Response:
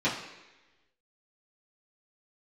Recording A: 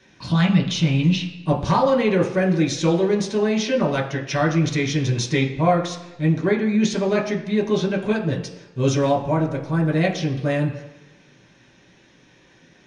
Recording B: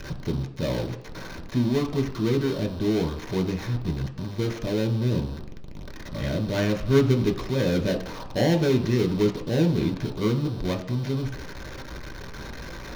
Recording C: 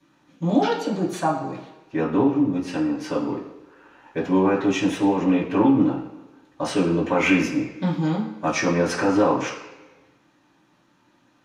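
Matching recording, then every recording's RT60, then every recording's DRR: C; 1.1, 1.1, 1.1 seconds; −1.0, 4.0, −10.5 decibels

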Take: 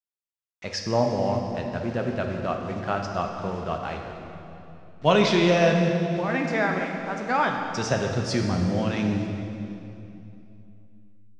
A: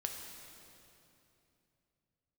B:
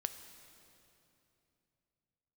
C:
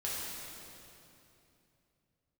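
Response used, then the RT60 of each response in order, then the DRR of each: A; 2.9, 2.9, 2.9 seconds; 2.0, 8.5, −7.5 decibels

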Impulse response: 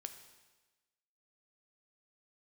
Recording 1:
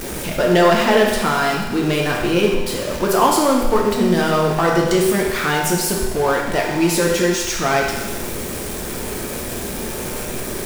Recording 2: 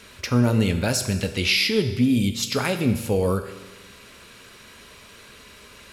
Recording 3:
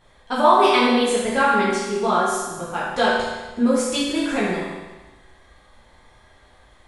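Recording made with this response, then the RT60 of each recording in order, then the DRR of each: 2; 1.2, 1.2, 1.2 seconds; −1.0, 7.5, −8.5 decibels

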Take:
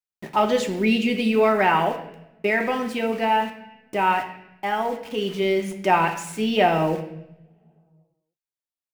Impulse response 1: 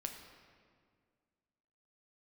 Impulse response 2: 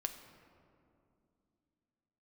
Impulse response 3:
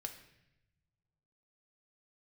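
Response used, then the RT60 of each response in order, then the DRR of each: 3; 2.0, 2.6, 0.90 seconds; 3.0, 6.0, 3.5 decibels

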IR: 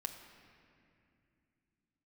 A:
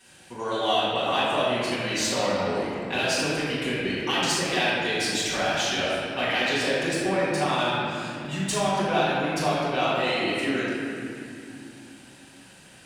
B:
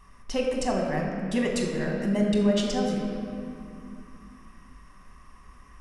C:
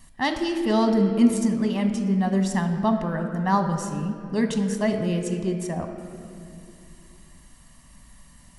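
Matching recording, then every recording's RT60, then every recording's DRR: C; 2.5, 2.5, 2.6 seconds; −11.0, −1.0, 5.5 decibels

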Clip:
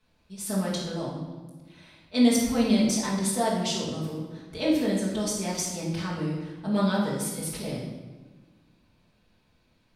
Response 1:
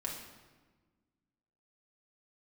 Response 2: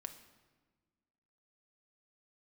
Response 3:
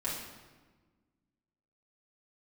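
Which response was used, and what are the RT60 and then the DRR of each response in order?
3; 1.4, 1.4, 1.4 seconds; −2.5, 7.0, −8.5 decibels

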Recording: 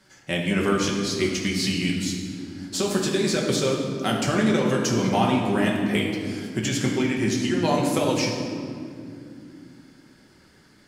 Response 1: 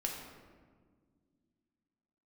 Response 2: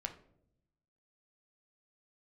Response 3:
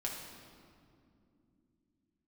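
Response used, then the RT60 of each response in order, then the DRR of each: 3; non-exponential decay, non-exponential decay, 2.6 s; −0.5, 5.0, −2.5 decibels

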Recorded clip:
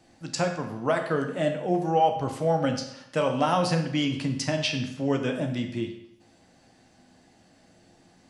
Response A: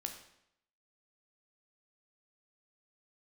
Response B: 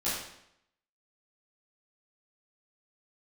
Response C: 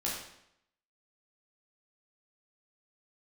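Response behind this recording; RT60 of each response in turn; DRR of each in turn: A; 0.75, 0.75, 0.75 seconds; 4.0, −12.5, −6.0 decibels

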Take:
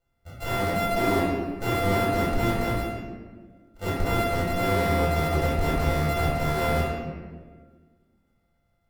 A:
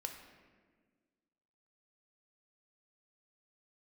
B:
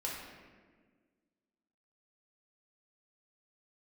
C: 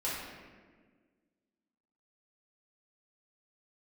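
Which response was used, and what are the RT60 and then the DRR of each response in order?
C; 1.6, 1.6, 1.6 seconds; 3.5, −4.5, −9.0 decibels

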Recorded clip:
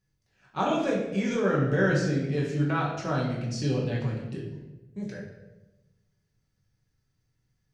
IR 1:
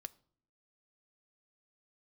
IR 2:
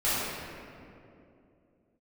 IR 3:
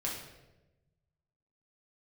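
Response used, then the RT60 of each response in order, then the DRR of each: 3; 0.55, 2.8, 1.0 seconds; 11.5, −13.5, −4.5 decibels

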